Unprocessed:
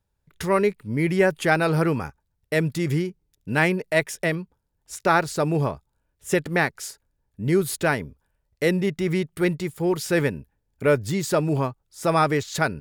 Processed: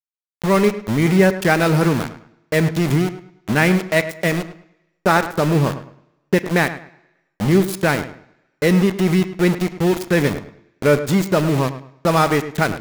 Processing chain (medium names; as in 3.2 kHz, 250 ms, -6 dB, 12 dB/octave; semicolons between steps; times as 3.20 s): level-controlled noise filter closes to 360 Hz, open at -20.5 dBFS; dynamic bell 200 Hz, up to +7 dB, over -39 dBFS, Q 2.4; in parallel at -2 dB: compression 10:1, threshold -28 dBFS, peak gain reduction 16 dB; on the sum: small samples zeroed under -22.5 dBFS; filtered feedback delay 105 ms, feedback 28%, low-pass 2.6 kHz, level -12.5 dB; on a send at -14.5 dB: reverberation RT60 1.1 s, pre-delay 25 ms; on the sum: trim +2 dB